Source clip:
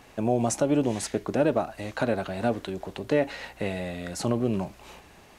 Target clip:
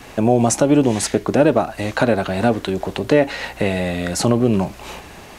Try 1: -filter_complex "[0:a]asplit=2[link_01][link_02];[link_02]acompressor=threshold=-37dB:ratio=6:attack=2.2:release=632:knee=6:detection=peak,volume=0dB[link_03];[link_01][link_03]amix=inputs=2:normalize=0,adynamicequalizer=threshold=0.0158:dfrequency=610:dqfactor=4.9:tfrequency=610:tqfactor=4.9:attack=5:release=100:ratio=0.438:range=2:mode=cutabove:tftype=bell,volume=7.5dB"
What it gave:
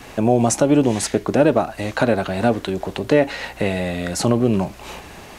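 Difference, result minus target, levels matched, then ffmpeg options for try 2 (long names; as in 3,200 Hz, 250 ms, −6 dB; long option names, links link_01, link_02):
downward compressor: peak gain reduction +6.5 dB
-filter_complex "[0:a]asplit=2[link_01][link_02];[link_02]acompressor=threshold=-29dB:ratio=6:attack=2.2:release=632:knee=6:detection=peak,volume=0dB[link_03];[link_01][link_03]amix=inputs=2:normalize=0,adynamicequalizer=threshold=0.0158:dfrequency=610:dqfactor=4.9:tfrequency=610:tqfactor=4.9:attack=5:release=100:ratio=0.438:range=2:mode=cutabove:tftype=bell,volume=7.5dB"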